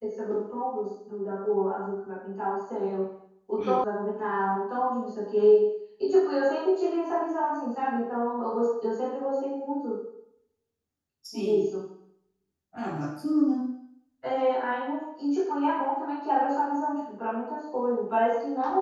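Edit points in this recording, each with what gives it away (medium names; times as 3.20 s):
3.84 s: sound stops dead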